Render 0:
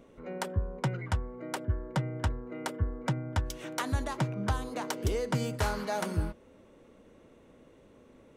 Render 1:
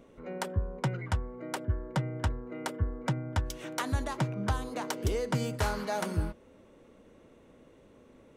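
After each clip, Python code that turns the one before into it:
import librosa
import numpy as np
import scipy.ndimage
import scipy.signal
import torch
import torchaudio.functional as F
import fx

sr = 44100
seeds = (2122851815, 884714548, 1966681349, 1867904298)

y = x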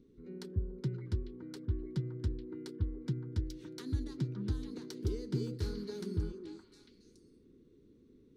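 y = fx.curve_eq(x, sr, hz=(410.0, 620.0, 1500.0, 2900.0, 4300.0, 7200.0), db=(0, -29, -16, -15, -1, -13))
y = fx.echo_stepped(y, sr, ms=283, hz=400.0, octaves=1.4, feedback_pct=70, wet_db=-1.5)
y = y * librosa.db_to_amplitude(-4.0)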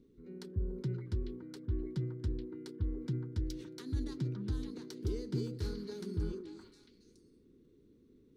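y = fx.sustainer(x, sr, db_per_s=70.0)
y = y * librosa.db_to_amplitude(-2.0)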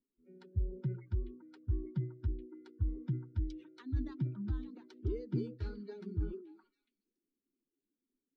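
y = fx.bin_expand(x, sr, power=2.0)
y = scipy.signal.sosfilt(scipy.signal.butter(2, 2400.0, 'lowpass', fs=sr, output='sos'), y)
y = y * librosa.db_to_amplitude(3.5)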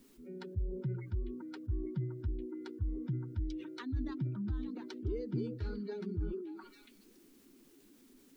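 y = fx.env_flatten(x, sr, amount_pct=50)
y = y * librosa.db_to_amplitude(-3.0)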